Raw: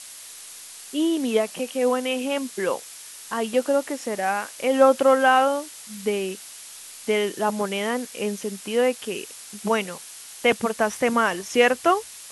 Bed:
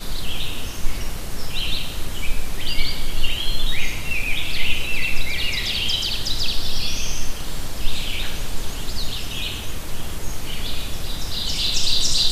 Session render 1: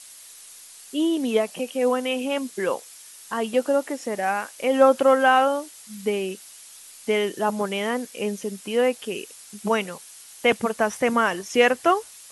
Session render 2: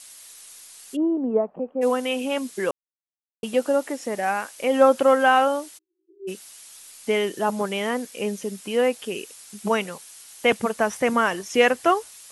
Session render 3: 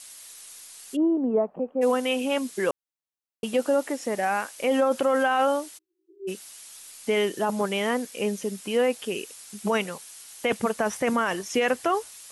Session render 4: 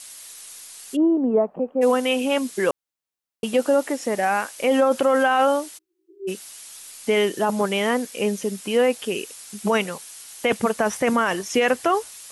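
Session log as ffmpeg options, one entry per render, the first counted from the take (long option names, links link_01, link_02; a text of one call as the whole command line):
ffmpeg -i in.wav -af "afftdn=noise_reduction=6:noise_floor=-42" out.wav
ffmpeg -i in.wav -filter_complex "[0:a]asplit=3[link_01][link_02][link_03];[link_01]afade=type=out:start_time=0.95:duration=0.02[link_04];[link_02]lowpass=frequency=1100:width=0.5412,lowpass=frequency=1100:width=1.3066,afade=type=in:start_time=0.95:duration=0.02,afade=type=out:start_time=1.81:duration=0.02[link_05];[link_03]afade=type=in:start_time=1.81:duration=0.02[link_06];[link_04][link_05][link_06]amix=inputs=3:normalize=0,asplit=3[link_07][link_08][link_09];[link_07]afade=type=out:start_time=5.77:duration=0.02[link_10];[link_08]asuperpass=centerf=350:order=20:qfactor=4.9,afade=type=in:start_time=5.77:duration=0.02,afade=type=out:start_time=6.27:duration=0.02[link_11];[link_09]afade=type=in:start_time=6.27:duration=0.02[link_12];[link_10][link_11][link_12]amix=inputs=3:normalize=0,asplit=3[link_13][link_14][link_15];[link_13]atrim=end=2.71,asetpts=PTS-STARTPTS,afade=type=out:start_time=2.706:duration=0.004:curve=hsin[link_16];[link_14]atrim=start=2.71:end=3.43,asetpts=PTS-STARTPTS,volume=0[link_17];[link_15]atrim=start=3.43,asetpts=PTS-STARTPTS,afade=type=in:duration=0.004:curve=hsin[link_18];[link_16][link_17][link_18]concat=n=3:v=0:a=1" out.wav
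ffmpeg -i in.wav -af "alimiter=limit=-14.5dB:level=0:latency=1:release=11" out.wav
ffmpeg -i in.wav -af "volume=4dB" out.wav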